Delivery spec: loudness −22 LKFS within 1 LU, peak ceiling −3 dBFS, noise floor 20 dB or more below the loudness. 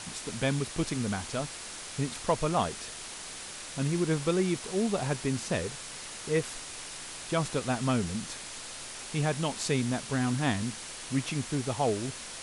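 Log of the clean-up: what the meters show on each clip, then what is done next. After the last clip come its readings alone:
background noise floor −42 dBFS; target noise floor −52 dBFS; integrated loudness −31.5 LKFS; sample peak −13.5 dBFS; target loudness −22.0 LKFS
→ broadband denoise 10 dB, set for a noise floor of −42 dBFS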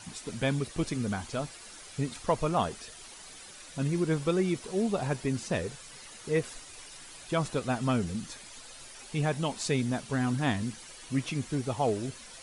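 background noise floor −48 dBFS; target noise floor −52 dBFS
→ broadband denoise 6 dB, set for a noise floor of −48 dBFS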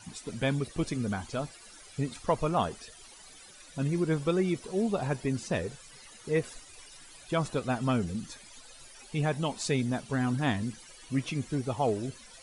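background noise floor −52 dBFS; integrated loudness −31.5 LKFS; sample peak −14.0 dBFS; target loudness −22.0 LKFS
→ level +9.5 dB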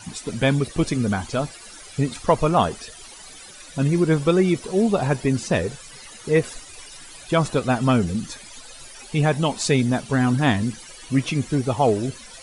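integrated loudness −22.0 LKFS; sample peak −4.5 dBFS; background noise floor −43 dBFS

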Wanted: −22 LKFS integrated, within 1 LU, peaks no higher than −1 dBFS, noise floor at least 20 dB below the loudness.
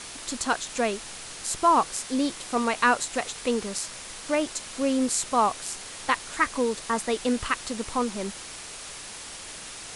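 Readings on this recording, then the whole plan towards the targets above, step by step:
background noise floor −41 dBFS; target noise floor −47 dBFS; integrated loudness −27.0 LKFS; sample peak −8.0 dBFS; target loudness −22.0 LKFS
→ noise reduction from a noise print 6 dB
level +5 dB

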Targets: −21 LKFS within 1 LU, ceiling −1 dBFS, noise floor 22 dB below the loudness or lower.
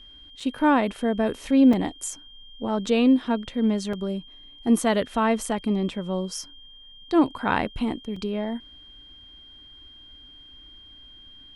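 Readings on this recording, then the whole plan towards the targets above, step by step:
number of dropouts 4; longest dropout 4.2 ms; interfering tone 3,200 Hz; level of the tone −46 dBFS; integrated loudness −24.5 LKFS; sample peak −9.0 dBFS; target loudness −21.0 LKFS
→ repair the gap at 0:00.40/0:01.73/0:03.93/0:08.16, 4.2 ms
notch filter 3,200 Hz, Q 30
level +3.5 dB

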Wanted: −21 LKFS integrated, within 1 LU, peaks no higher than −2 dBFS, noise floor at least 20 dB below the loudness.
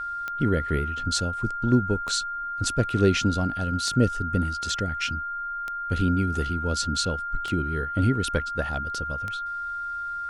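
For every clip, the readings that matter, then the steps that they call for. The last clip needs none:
number of clicks 6; interfering tone 1,400 Hz; level of the tone −29 dBFS; integrated loudness −26.0 LKFS; sample peak −8.5 dBFS; target loudness −21.0 LKFS
→ click removal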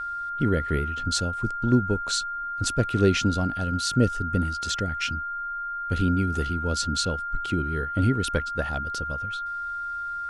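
number of clicks 0; interfering tone 1,400 Hz; level of the tone −29 dBFS
→ notch filter 1,400 Hz, Q 30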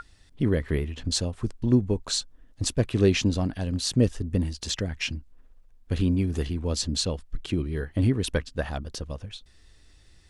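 interfering tone none found; integrated loudness −27.0 LKFS; sample peak −9.0 dBFS; target loudness −21.0 LKFS
→ level +6 dB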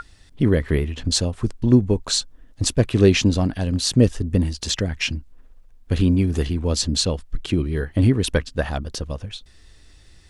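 integrated loudness −21.0 LKFS; sample peak −3.0 dBFS; background noise floor −50 dBFS

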